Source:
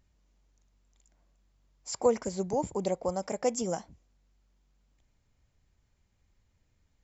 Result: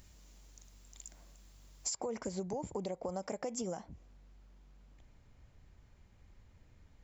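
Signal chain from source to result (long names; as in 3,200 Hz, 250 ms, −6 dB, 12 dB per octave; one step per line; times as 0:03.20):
high-shelf EQ 3,900 Hz +11 dB, from 0:01.96 −3.5 dB, from 0:03.77 −10 dB
brickwall limiter −24 dBFS, peak gain reduction 10.5 dB
downward compressor 8 to 1, threshold −46 dBFS, peak gain reduction 17.5 dB
level +10 dB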